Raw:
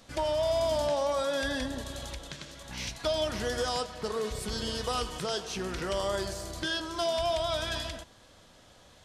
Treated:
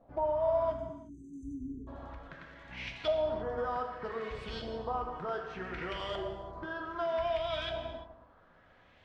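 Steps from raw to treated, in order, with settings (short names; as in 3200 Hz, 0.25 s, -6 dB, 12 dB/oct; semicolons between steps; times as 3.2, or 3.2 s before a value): LFO low-pass saw up 0.65 Hz 690–3100 Hz; spectral delete 0.73–1.87, 440–6000 Hz; non-linear reverb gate 0.38 s falling, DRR 3.5 dB; gain -7.5 dB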